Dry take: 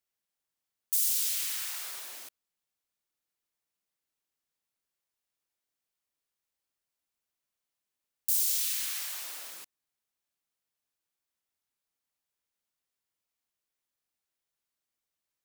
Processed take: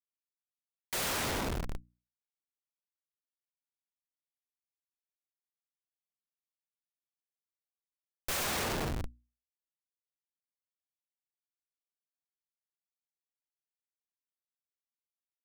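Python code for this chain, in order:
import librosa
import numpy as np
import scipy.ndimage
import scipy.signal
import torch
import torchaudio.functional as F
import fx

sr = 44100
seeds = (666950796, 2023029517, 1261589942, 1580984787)

y = fx.quant_dither(x, sr, seeds[0], bits=6, dither='none')
y = fx.schmitt(y, sr, flips_db=-26.0)
y = fx.hum_notches(y, sr, base_hz=60, count=5)
y = y * librosa.db_to_amplitude(6.0)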